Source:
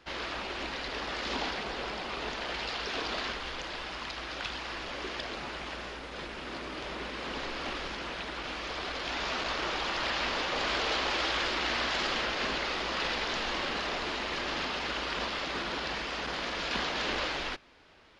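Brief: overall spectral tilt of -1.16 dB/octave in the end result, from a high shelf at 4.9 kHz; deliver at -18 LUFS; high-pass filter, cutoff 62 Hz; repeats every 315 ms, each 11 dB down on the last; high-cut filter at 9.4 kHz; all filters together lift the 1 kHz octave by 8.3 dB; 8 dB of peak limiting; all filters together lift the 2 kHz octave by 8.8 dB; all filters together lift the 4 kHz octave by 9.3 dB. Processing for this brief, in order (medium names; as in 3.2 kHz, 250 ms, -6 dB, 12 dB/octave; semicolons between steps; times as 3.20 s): high-pass 62 Hz; low-pass 9.4 kHz; peaking EQ 1 kHz +8 dB; peaking EQ 2 kHz +6 dB; peaking EQ 4 kHz +7.5 dB; treble shelf 4.9 kHz +4 dB; peak limiter -18.5 dBFS; feedback delay 315 ms, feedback 28%, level -11 dB; trim +8.5 dB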